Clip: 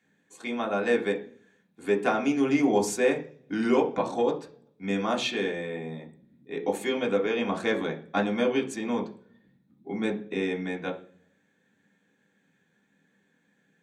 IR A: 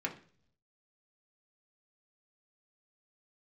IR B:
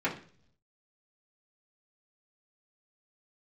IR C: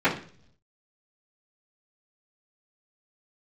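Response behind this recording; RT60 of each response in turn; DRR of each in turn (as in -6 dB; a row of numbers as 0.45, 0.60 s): A; 0.50, 0.50, 0.50 s; -1.0, -8.5, -17.5 dB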